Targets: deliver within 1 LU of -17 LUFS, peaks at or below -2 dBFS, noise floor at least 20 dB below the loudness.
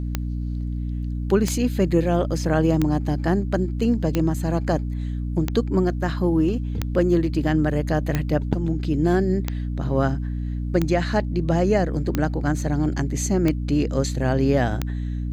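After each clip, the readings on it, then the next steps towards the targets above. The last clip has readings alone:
clicks 12; hum 60 Hz; harmonics up to 300 Hz; hum level -24 dBFS; loudness -23.0 LUFS; peak -5.5 dBFS; loudness target -17.0 LUFS
-> de-click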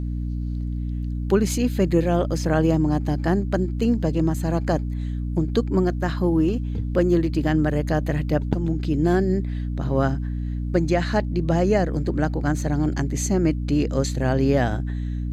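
clicks 0; hum 60 Hz; harmonics up to 300 Hz; hum level -24 dBFS
-> notches 60/120/180/240/300 Hz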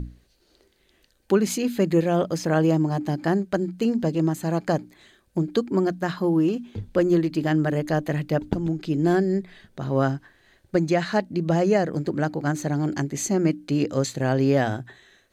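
hum none; loudness -24.0 LUFS; peak -6.0 dBFS; loudness target -17.0 LUFS
-> gain +7 dB; limiter -2 dBFS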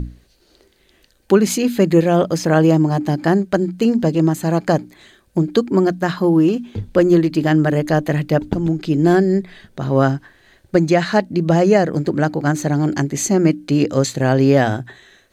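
loudness -17.0 LUFS; peak -2.0 dBFS; noise floor -57 dBFS

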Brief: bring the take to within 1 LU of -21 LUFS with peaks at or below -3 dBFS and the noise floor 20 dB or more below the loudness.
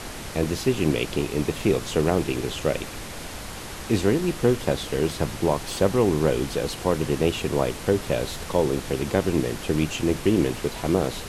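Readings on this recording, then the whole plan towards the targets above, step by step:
noise floor -36 dBFS; noise floor target -45 dBFS; loudness -24.5 LUFS; peak -7.0 dBFS; loudness target -21.0 LUFS
-> noise print and reduce 9 dB; gain +3.5 dB

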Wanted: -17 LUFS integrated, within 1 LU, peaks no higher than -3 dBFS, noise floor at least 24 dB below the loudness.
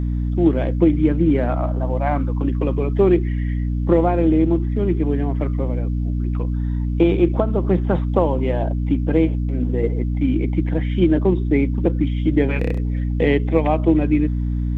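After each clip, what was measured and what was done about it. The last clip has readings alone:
hum 60 Hz; harmonics up to 300 Hz; hum level -19 dBFS; loudness -19.5 LUFS; peak -2.5 dBFS; loudness target -17.0 LUFS
-> de-hum 60 Hz, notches 5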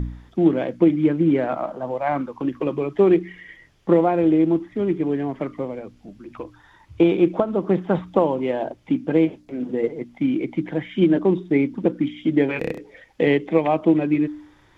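hum none; loudness -21.5 LUFS; peak -4.5 dBFS; loudness target -17.0 LUFS
-> gain +4.5 dB; limiter -3 dBFS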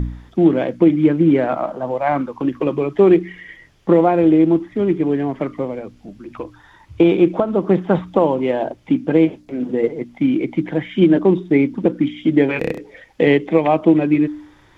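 loudness -17.0 LUFS; peak -3.0 dBFS; noise floor -50 dBFS

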